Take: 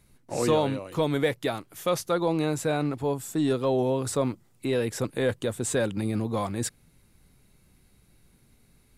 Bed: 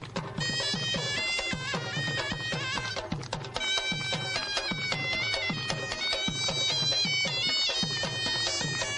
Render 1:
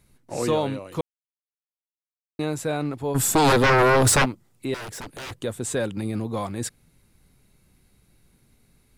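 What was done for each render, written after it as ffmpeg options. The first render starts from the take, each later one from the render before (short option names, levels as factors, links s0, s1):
-filter_complex "[0:a]asplit=3[s0][s1][s2];[s0]afade=t=out:st=3.14:d=0.02[s3];[s1]aeval=exprs='0.211*sin(PI/2*4.47*val(0)/0.211)':c=same,afade=t=in:st=3.14:d=0.02,afade=t=out:st=4.24:d=0.02[s4];[s2]afade=t=in:st=4.24:d=0.02[s5];[s3][s4][s5]amix=inputs=3:normalize=0,asettb=1/sr,asplit=3[s6][s7][s8];[s6]atrim=end=4.744[s9];[s7]atrim=start=4.74:end=5.37,asetpts=PTS-STARTPTS,afade=t=in:d=0.004:c=qsin,afade=t=out:st=0.626:d=0.004:c=qsin,aeval=exprs='0.0299*(abs(mod(val(0)/0.0299+3,4)-2)-1)':c=same[s10];[s8]atrim=start=5.366[s11];[s9][s10]acrossfade=d=0.004:c1=hsin:c2=qsin[s12];[s12][s11]acrossfade=d=0.004:c1=qsin:c2=hsin,asplit=3[s13][s14][s15];[s13]atrim=end=1.01,asetpts=PTS-STARTPTS,afade=t=out:st=1.006:d=0.004:c=hsin[s16];[s14]atrim=start=1.01:end=2.39,asetpts=PTS-STARTPTS,volume=0[s17];[s15]atrim=start=2.39,asetpts=PTS-STARTPTS,afade=t=in:d=0.004:c=hsin[s18];[s16][s17][s18]concat=n=3:v=0:a=1"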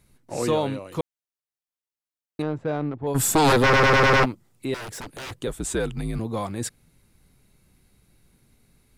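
-filter_complex "[0:a]asettb=1/sr,asplit=3[s0][s1][s2];[s0]atrim=end=2.424[s3];[s1]atrim=start=2.42:end=3.07,asetpts=PTS-STARTPTS,afade=t=in:d=0.004:c=qsin,afade=t=out:st=0.646:d=0.004:c=qsin,adynamicsmooth=sensitivity=1:basefreq=1000[s4];[s2]atrim=start=3.066[s5];[s3][s4]acrossfade=d=0.004:c1=hsin:c2=qsin[s6];[s6][s5]acrossfade=d=0.004:c1=qsin:c2=hsin,asettb=1/sr,asplit=3[s7][s8][s9];[s7]atrim=end=5.474[s10];[s8]atrim=start=5.47:end=6.19,asetpts=PTS-STARTPTS,afade=t=in:d=0.004:c=qsin,afade=t=out:st=0.716:d=0.004:c=qsin,afreqshift=-67[s11];[s9]atrim=start=6.186[s12];[s10][s11]acrossfade=d=0.004:c1=hsin:c2=qsin[s13];[s13][s12]acrossfade=d=0.004:c1=qsin:c2=hsin,asplit=7[s14][s15][s16][s17][s18][s19][s20];[s14]atrim=end=3.732[s21];[s15]atrim=start=3.628:end=3.732[s22];[s16]atrim=start=3.628:end=3.732[s23];[s17]atrim=start=3.628:end=3.732[s24];[s18]atrim=start=3.628:end=3.732[s25];[s19]atrim=start=3.628:end=3.732[s26];[s20]atrim=start=4.228[s27];[s21][s22]acrossfade=d=0.004:c1=hsin:c2=hsin[s28];[s28][s23]acrossfade=d=0.004:c1=hsin:c2=hsin[s29];[s29][s24]acrossfade=d=0.004:c1=hsin:c2=hsin[s30];[s30][s25]acrossfade=d=0.004:c1=hsin:c2=hsin[s31];[s31][s26]acrossfade=d=0.004:c1=hsin:c2=hsin[s32];[s32][s27]acrossfade=d=0.004:c1=hsin:c2=hsin"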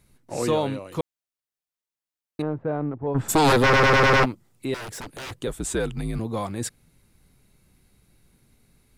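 -filter_complex "[0:a]asplit=3[s0][s1][s2];[s0]afade=t=out:st=2.41:d=0.02[s3];[s1]lowpass=1500,afade=t=in:st=2.41:d=0.02,afade=t=out:st=3.28:d=0.02[s4];[s2]afade=t=in:st=3.28:d=0.02[s5];[s3][s4][s5]amix=inputs=3:normalize=0"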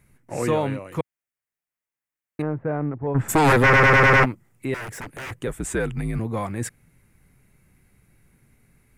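-af "equalizer=f=125:t=o:w=1:g=4,equalizer=f=2000:t=o:w=1:g=8,equalizer=f=4000:t=o:w=1:g=-10"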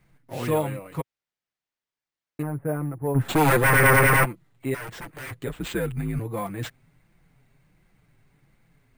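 -af "flanger=delay=5.6:depth=2.2:regen=4:speed=1.4:shape=triangular,acrusher=samples=4:mix=1:aa=0.000001"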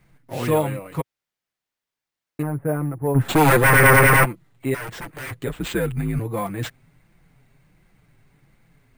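-af "volume=1.58"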